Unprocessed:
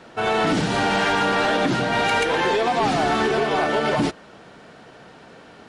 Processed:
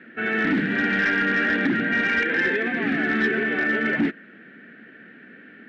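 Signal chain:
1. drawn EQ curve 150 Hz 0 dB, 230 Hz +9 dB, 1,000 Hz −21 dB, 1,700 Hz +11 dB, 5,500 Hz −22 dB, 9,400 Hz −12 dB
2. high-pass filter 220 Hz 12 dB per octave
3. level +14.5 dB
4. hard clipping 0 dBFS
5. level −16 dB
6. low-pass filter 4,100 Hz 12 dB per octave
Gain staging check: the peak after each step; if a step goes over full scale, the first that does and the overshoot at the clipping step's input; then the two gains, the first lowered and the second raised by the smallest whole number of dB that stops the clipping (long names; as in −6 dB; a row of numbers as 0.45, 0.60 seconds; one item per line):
−6.0, −7.0, +7.5, 0.0, −16.0, −15.5 dBFS
step 3, 7.5 dB
step 3 +6.5 dB, step 5 −8 dB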